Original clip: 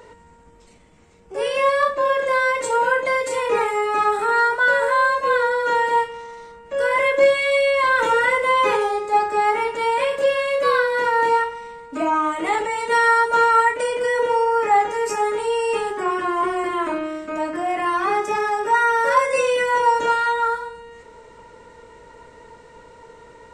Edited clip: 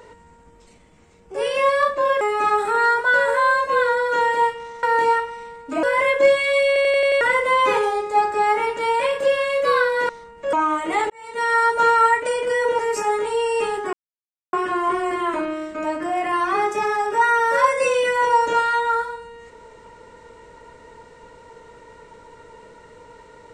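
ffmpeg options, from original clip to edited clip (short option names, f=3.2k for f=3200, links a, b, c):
-filter_complex "[0:a]asplit=15[a][b][c][d][e][f][g][h][i][j][k][l][m][n][o];[a]atrim=end=2.212[p];[b]atrim=start=3.748:end=6.372[q];[c]atrim=start=11.068:end=12.072[r];[d]atrim=start=6.808:end=7.742[s];[e]atrim=start=7.648:end=7.742[t];[f]atrim=start=7.648:end=7.742[u];[g]atrim=start=7.648:end=7.742[v];[h]atrim=start=7.648:end=7.742[w];[i]atrim=start=7.648:end=7.742[x];[j]atrim=start=8.188:end=11.072[y];[k]atrim=start=6.368:end=6.812[z];[l]atrim=start=12.068:end=12.64,asetpts=PTS-STARTPTS,afade=t=out:st=0.568:d=0.004:c=hsin[aa];[m]atrim=start=12.64:end=14.332,asetpts=PTS-STARTPTS,afade=t=in:d=0.6[ab];[n]atrim=start=14.918:end=16.06,asetpts=PTS-STARTPTS,afade=t=out:st=1.138:d=0.004:c=hsin,apad=pad_dur=0.6[ac];[o]atrim=start=16.06,asetpts=PTS-STARTPTS,afade=t=in:d=0.004:c=hsin[ad];[p][q]acrossfade=d=0.004:c1=hsin:c2=hsin[ae];[ae][r]acrossfade=d=0.004:c1=hsin:c2=hsin[af];[af][s]acrossfade=d=0.004:c1=hsin:c2=hsin[ag];[ag][t]acrossfade=d=0.004:c1=hsin:c2=hsin[ah];[ah][u]acrossfade=d=0.004:c1=hsin:c2=hsin[ai];[ai][v]acrossfade=d=0.004:c1=hsin:c2=hsin[aj];[aj][w]acrossfade=d=0.004:c1=hsin:c2=hsin[ak];[ak][x]acrossfade=d=0.004:c1=hsin:c2=hsin[al];[al][y]acrossfade=d=0.004:c1=hsin:c2=hsin[am];[am][z]acrossfade=d=0.004:c1=hsin:c2=hsin[an];[aa][ab]concat=n=2:v=0:a=1[ao];[an][ao]acrossfade=d=0.004:c1=hsin:c2=hsin[ap];[ac][ad]concat=n=2:v=0:a=1[aq];[ap][aq]acrossfade=d=0.004:c1=hsin:c2=hsin"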